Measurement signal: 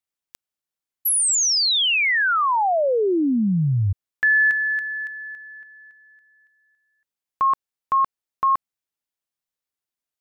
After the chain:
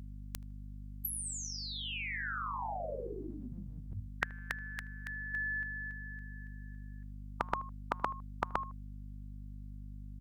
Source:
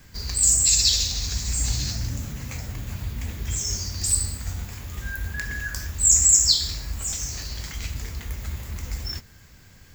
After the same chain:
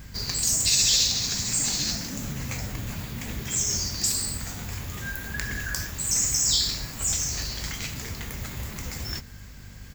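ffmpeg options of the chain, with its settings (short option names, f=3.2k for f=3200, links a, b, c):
-filter_complex "[0:a]asplit=2[a][b];[b]adelay=78,lowpass=f=1.6k:p=1,volume=-23dB,asplit=2[c][d];[d]adelay=78,lowpass=f=1.6k:p=1,volume=0.32[e];[a][c][e]amix=inputs=3:normalize=0,afftfilt=real='re*lt(hypot(re,im),0.251)':imag='im*lt(hypot(re,im),0.251)':win_size=1024:overlap=0.75,aeval=exprs='val(0)+0.00398*(sin(2*PI*50*n/s)+sin(2*PI*2*50*n/s)/2+sin(2*PI*3*50*n/s)/3+sin(2*PI*4*50*n/s)/4+sin(2*PI*5*50*n/s)/5)':c=same,volume=3.5dB"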